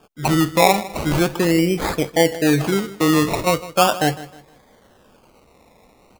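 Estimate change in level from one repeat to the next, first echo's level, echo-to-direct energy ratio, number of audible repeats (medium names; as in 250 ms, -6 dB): -9.5 dB, -17.0 dB, -16.5 dB, 2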